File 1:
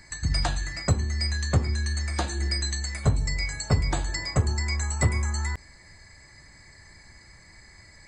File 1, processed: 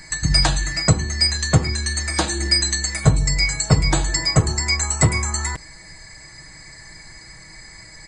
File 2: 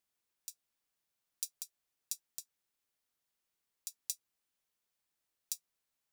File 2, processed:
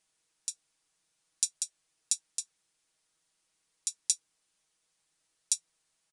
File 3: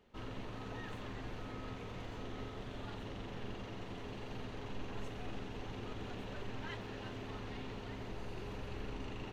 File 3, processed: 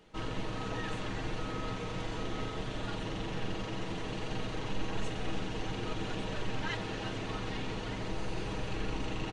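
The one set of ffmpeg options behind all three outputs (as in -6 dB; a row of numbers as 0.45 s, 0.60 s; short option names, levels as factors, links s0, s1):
-af "highshelf=f=5000:g=6.5,aecho=1:1:6.3:0.53,aresample=22050,aresample=44100,volume=2.24"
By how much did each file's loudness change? +8.5 LU, +11.0 LU, +8.0 LU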